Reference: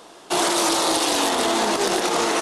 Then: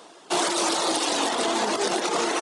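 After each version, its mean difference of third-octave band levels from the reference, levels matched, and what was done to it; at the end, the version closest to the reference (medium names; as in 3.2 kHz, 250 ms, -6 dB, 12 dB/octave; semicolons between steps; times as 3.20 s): 2.0 dB: high-pass 150 Hz 12 dB/octave; reverb removal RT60 0.71 s; echo from a far wall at 50 m, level -9 dB; resampled via 22.05 kHz; trim -2 dB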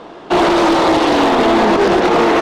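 6.5 dB: low-pass 2.7 kHz 12 dB/octave; bass shelf 480 Hz +7 dB; hard clipper -16.5 dBFS, distortion -13 dB; loudspeaker Doppler distortion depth 0.1 ms; trim +8.5 dB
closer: first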